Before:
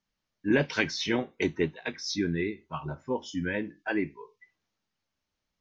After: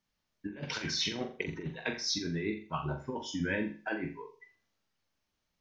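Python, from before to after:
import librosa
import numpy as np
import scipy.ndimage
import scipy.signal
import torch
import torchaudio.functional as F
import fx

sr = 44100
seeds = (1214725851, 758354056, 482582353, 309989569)

y = fx.over_compress(x, sr, threshold_db=-31.0, ratio=-0.5)
y = fx.room_flutter(y, sr, wall_m=7.3, rt60_s=0.37)
y = y * librosa.db_to_amplitude(-3.0)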